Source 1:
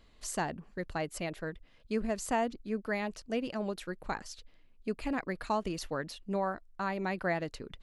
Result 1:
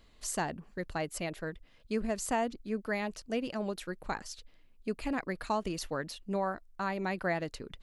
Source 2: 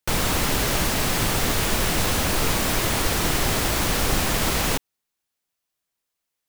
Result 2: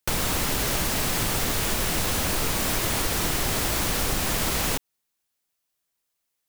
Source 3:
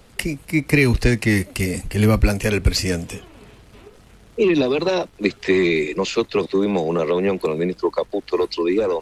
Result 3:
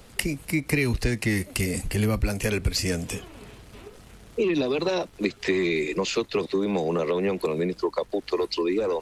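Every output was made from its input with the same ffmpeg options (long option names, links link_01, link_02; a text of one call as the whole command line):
ffmpeg -i in.wav -af "acompressor=threshold=-24dB:ratio=2.5,highshelf=frequency=5900:gain=4" out.wav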